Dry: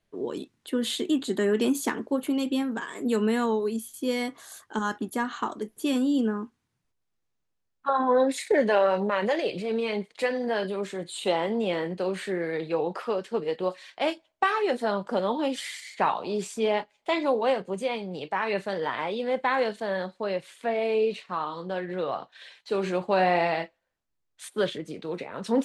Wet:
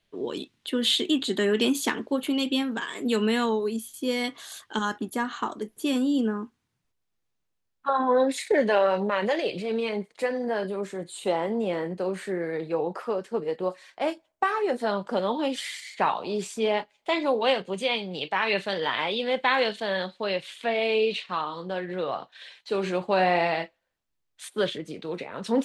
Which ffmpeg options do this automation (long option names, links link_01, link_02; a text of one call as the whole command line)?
ffmpeg -i in.wav -af "asetnsamples=nb_out_samples=441:pad=0,asendcmd='3.49 equalizer g 3.5;4.24 equalizer g 11;4.85 equalizer g 2;9.89 equalizer g -6.5;14.8 equalizer g 2.5;17.41 equalizer g 11.5;21.41 equalizer g 3',equalizer=frequency=3300:width_type=o:width=1.3:gain=9.5" out.wav